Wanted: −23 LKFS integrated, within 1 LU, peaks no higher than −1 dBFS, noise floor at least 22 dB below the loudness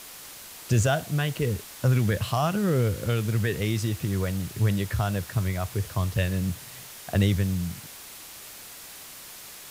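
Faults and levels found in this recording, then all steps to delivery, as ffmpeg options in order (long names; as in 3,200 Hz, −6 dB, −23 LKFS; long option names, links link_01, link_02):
background noise floor −44 dBFS; target noise floor −49 dBFS; integrated loudness −26.5 LKFS; sample peak −10.5 dBFS; target loudness −23.0 LKFS
→ -af "afftdn=noise_reduction=6:noise_floor=-44"
-af "volume=3.5dB"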